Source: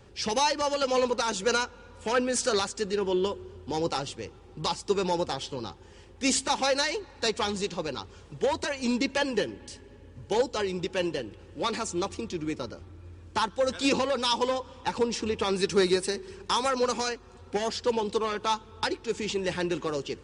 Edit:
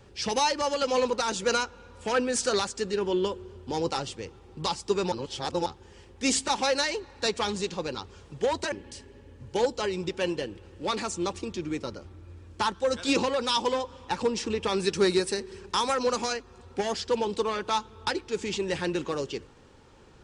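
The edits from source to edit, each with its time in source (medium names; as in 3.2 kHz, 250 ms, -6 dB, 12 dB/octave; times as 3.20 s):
5.12–5.66 s: reverse
8.72–9.48 s: delete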